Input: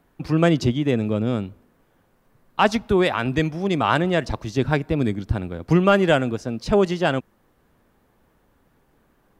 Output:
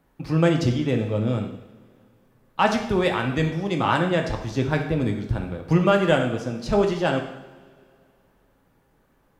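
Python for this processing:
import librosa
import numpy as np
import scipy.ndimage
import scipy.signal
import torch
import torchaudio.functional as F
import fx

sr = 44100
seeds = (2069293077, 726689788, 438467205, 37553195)

y = fx.rev_double_slope(x, sr, seeds[0], early_s=0.79, late_s=2.7, knee_db=-20, drr_db=2.5)
y = y * librosa.db_to_amplitude(-3.5)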